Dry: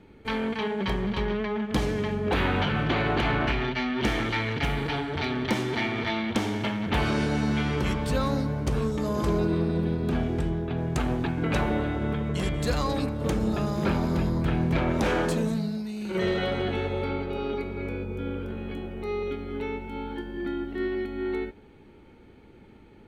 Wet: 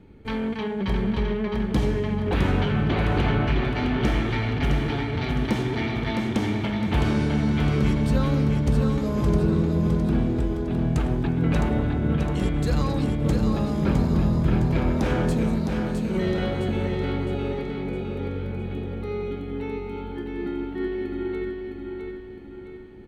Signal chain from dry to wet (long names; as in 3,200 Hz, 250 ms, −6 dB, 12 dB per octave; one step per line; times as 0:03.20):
low-shelf EQ 310 Hz +9.5 dB
repeating echo 661 ms, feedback 46%, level −5 dB
level −3.5 dB